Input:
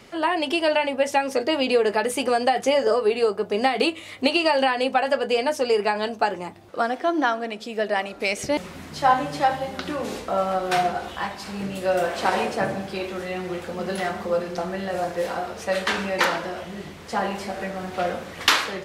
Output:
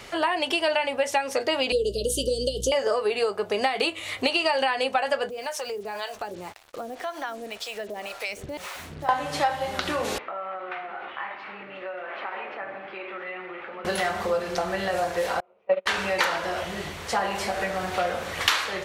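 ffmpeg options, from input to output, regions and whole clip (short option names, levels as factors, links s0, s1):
-filter_complex "[0:a]asettb=1/sr,asplit=3[s0][s1][s2];[s0]atrim=end=1.724[s3];[s1]atrim=start=1.72:end=2.72,asetpts=PTS-STARTPTS,afade=t=in:d=0.004:c=qsin,afade=t=out:st=0.996:d=0.004:c=qsin,asuperstop=centerf=1300:order=20:qfactor=0.54,aeval=exprs='val(0)+0.0141*(sin(2*PI*60*n/s)+sin(2*PI*2*60*n/s)/2+sin(2*PI*3*60*n/s)/3+sin(2*PI*4*60*n/s)/4+sin(2*PI*5*60*n/s)/5)':c=same[s4];[s2]atrim=start=2.716[s5];[s3][s4]acrossfade=d=0.004:c1=hsin:c2=qsin[s6];[s6][s5]acrossfade=d=0.004:c1=qsin:c2=hsin,asettb=1/sr,asplit=3[s7][s8][s9];[s7]atrim=end=5.294[s10];[s8]atrim=start=5.29:end=9.09,asetpts=PTS-STARTPTS,afade=t=in:d=0.004:c=qsin,afade=t=out:st=3.796:d=0.004:c=qsin,acrossover=split=520[s11][s12];[s11]aeval=exprs='val(0)*(1-1/2+1/2*cos(2*PI*1.9*n/s))':c=same[s13];[s12]aeval=exprs='val(0)*(1-1/2-1/2*cos(2*PI*1.9*n/s))':c=same[s14];[s13][s14]amix=inputs=2:normalize=0,acrusher=bits=7:mix=0:aa=0.5,acompressor=threshold=0.0158:ratio=3:attack=3.2:release=140:knee=1:detection=peak[s15];[s9]atrim=start=9.086[s16];[s10][s15]acrossfade=d=0.004:c1=hsin:c2=qsin[s17];[s17][s16]acrossfade=d=0.004:c1=qsin:c2=hsin,asettb=1/sr,asplit=3[s18][s19][s20];[s18]atrim=end=10.184[s21];[s19]atrim=start=10.18:end=13.85,asetpts=PTS-STARTPTS,afade=t=in:d=0.004:c=qsin,afade=t=out:st=3.666:d=0.004:c=qsin,acompressor=threshold=0.0398:ratio=6:attack=3.2:release=140:knee=1:detection=peak,highpass=470,equalizer=f=480:t=q:w=4:g=-10,equalizer=f=710:t=q:w=4:g=-9,equalizer=f=1000:t=q:w=4:g=-6,equalizer=f=1600:t=q:w=4:g=-6,lowpass=f=2200:w=0.5412,lowpass=f=2200:w=1.3066[s22];[s20]atrim=start=13.846[s23];[s21][s22]acrossfade=d=0.004:c1=hsin:c2=qsin[s24];[s24][s23]acrossfade=d=0.004:c1=qsin:c2=hsin,asettb=1/sr,asplit=3[s25][s26][s27];[s25]atrim=end=15.404[s28];[s26]atrim=start=15.4:end=15.86,asetpts=PTS-STARTPTS,afade=t=in:d=0.004:c=qsin,afade=t=out:st=0.456:d=0.004:c=qsin,agate=range=0.0158:threshold=0.0708:ratio=16:release=100:detection=peak,highpass=160,equalizer=f=200:t=q:w=4:g=6,equalizer=f=380:t=q:w=4:g=9,equalizer=f=550:t=q:w=4:g=10,equalizer=f=1000:t=q:w=4:g=4,equalizer=f=1700:t=q:w=4:g=-10,equalizer=f=2400:t=q:w=4:g=4,lowpass=f=2700:w=0.5412,lowpass=f=2700:w=1.3066[s29];[s27]atrim=start=15.856[s30];[s28][s29]acrossfade=d=0.004:c1=hsin:c2=qsin[s31];[s31][s30]acrossfade=d=0.004:c1=qsin:c2=hsin,equalizer=f=230:w=0.8:g=-10,bandreject=f=5000:w=28,acompressor=threshold=0.0251:ratio=2.5,volume=2.37"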